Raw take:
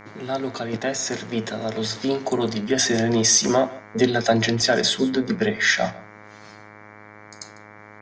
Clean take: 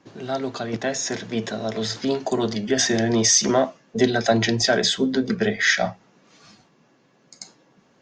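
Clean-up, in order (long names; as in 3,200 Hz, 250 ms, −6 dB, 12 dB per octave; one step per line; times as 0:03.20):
hum removal 105.2 Hz, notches 22
echo removal 149 ms −19.5 dB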